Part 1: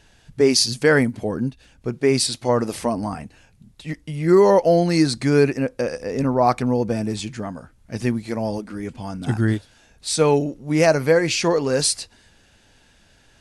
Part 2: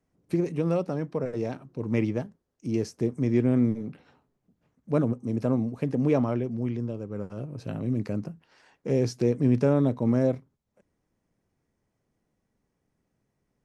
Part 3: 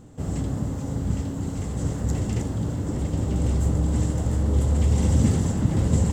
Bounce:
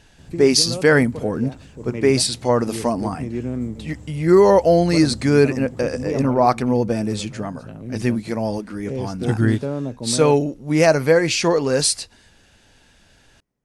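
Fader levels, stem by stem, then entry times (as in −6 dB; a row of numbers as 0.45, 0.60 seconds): +1.5, −3.5, −18.0 decibels; 0.00, 0.00, 0.00 seconds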